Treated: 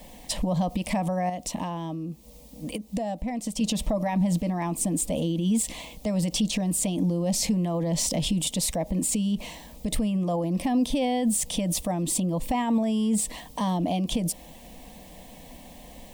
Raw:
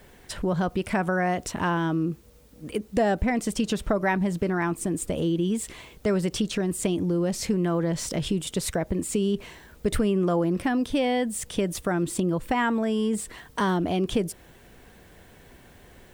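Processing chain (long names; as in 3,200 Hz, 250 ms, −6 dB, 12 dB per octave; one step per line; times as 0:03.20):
0:01.29–0:03.61: downward compressor 10 to 1, threshold −34 dBFS, peak gain reduction 16 dB
brickwall limiter −24 dBFS, peak gain reduction 12 dB
phaser with its sweep stopped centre 390 Hz, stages 6
level +8.5 dB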